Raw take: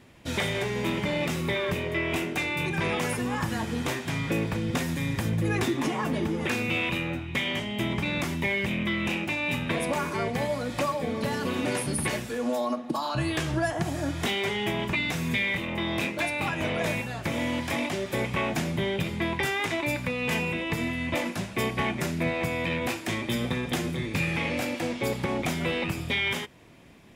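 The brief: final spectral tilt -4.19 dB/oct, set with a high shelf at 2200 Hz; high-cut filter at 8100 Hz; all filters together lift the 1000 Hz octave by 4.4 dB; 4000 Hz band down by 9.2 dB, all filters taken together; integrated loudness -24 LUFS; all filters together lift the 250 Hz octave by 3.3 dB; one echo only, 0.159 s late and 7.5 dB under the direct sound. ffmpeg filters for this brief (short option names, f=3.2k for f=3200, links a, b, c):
-af "lowpass=8.1k,equalizer=f=250:t=o:g=4,equalizer=f=1k:t=o:g=7,highshelf=f=2.2k:g=-8.5,equalizer=f=4k:t=o:g=-5,aecho=1:1:159:0.422,volume=3dB"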